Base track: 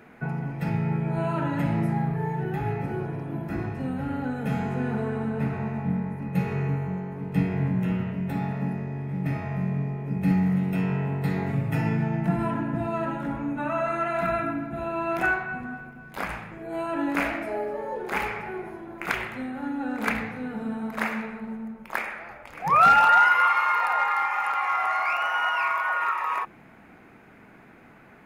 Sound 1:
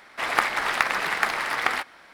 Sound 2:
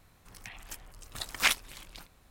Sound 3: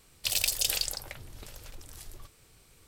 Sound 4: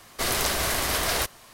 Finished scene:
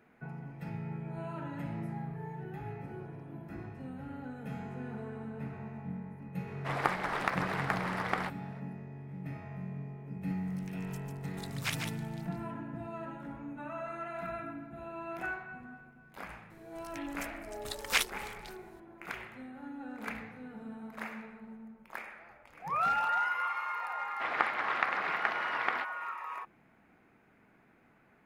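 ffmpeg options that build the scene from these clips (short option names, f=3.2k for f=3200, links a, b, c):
-filter_complex "[1:a]asplit=2[a][b];[2:a]asplit=2[c][d];[0:a]volume=-13.5dB[e];[a]tiltshelf=f=1.2k:g=7.5[f];[c]aecho=1:1:147:0.531[g];[b]highpass=110,lowpass=2.5k[h];[f]atrim=end=2.13,asetpts=PTS-STARTPTS,volume=-8.5dB,afade=t=in:d=0.004:c=hsin,afade=t=out:st=2.126:d=0.004:c=hsin,adelay=6470[i];[g]atrim=end=2.3,asetpts=PTS-STARTPTS,volume=-10.5dB,afade=t=in:d=0.004:c=hsin,afade=t=out:st=2.296:d=0.004:c=hsin,adelay=10220[j];[d]atrim=end=2.3,asetpts=PTS-STARTPTS,volume=-3dB,afade=t=in:d=0.004:c=hsin,afade=t=out:st=2.296:d=0.004:c=hsin,adelay=16500[k];[h]atrim=end=2.13,asetpts=PTS-STARTPTS,volume=-7.5dB,afade=t=in:d=0.004:c=hsin,afade=t=out:st=2.126:d=0.004:c=hsin,adelay=24020[l];[e][i][j][k][l]amix=inputs=5:normalize=0"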